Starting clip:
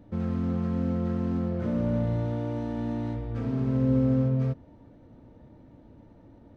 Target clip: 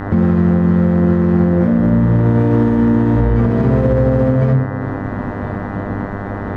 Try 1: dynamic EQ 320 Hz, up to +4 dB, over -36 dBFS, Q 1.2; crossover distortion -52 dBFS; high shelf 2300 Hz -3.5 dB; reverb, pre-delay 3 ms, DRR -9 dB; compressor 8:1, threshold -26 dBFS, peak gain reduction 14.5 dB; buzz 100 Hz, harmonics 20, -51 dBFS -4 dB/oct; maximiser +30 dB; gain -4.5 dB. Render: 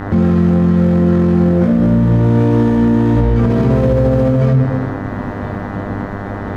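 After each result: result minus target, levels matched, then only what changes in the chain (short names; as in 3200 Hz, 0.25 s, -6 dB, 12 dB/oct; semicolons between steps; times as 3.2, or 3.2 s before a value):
compressor: peak gain reduction -7.5 dB; 4000 Hz band +5.0 dB
change: compressor 8:1, threshold -34.5 dBFS, peak gain reduction 22 dB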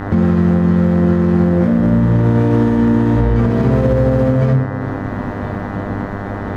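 4000 Hz band +5.0 dB
change: high shelf 2300 Hz -11 dB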